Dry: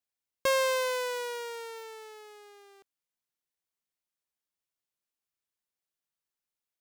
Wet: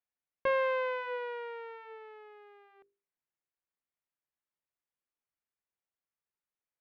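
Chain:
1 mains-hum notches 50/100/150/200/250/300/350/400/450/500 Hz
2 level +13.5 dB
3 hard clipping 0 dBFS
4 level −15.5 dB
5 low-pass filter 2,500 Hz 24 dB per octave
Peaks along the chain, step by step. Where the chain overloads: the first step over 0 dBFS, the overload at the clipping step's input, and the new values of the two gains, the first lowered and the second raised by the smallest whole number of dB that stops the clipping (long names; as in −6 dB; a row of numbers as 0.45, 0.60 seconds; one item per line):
−17.5, −4.0, −4.0, −19.5, −19.5 dBFS
no step passes full scale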